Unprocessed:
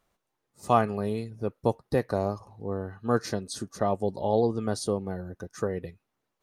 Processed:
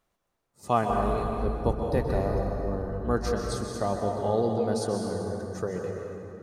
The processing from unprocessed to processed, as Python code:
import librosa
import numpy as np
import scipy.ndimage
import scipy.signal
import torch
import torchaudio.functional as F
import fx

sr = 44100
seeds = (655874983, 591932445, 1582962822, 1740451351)

y = fx.octave_divider(x, sr, octaves=2, level_db=1.0, at=(0.89, 3.14))
y = fx.rev_plate(y, sr, seeds[0], rt60_s=3.0, hf_ratio=0.6, predelay_ms=115, drr_db=1.0)
y = y * 10.0 ** (-2.5 / 20.0)